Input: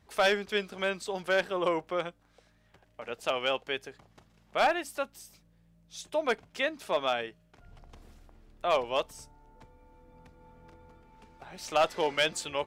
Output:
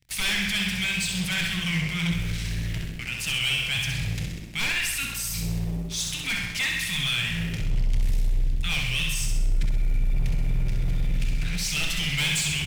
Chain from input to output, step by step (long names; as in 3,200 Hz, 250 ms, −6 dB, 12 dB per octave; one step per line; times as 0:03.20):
Chebyshev band-stop filter 150–2,100 Hz, order 3
high-shelf EQ 8,100 Hz +6 dB
reversed playback
upward compression, threshold −40 dBFS
reversed playback
low-shelf EQ 410 Hz +8.5 dB
on a send at −7 dB: convolution reverb RT60 1.1 s, pre-delay 3 ms
on the sum: leveller curve on the samples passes 5
brickwall limiter −22 dBFS, peak gain reduction 7 dB
repeating echo 65 ms, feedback 52%, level −5 dB
highs frequency-modulated by the lows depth 0.15 ms